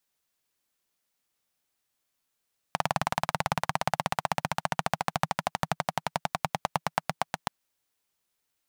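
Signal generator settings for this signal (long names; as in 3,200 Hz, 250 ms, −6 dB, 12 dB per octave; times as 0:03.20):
pulse-train model of a single-cylinder engine, changing speed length 4.73 s, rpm 2,300, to 900, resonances 160/780 Hz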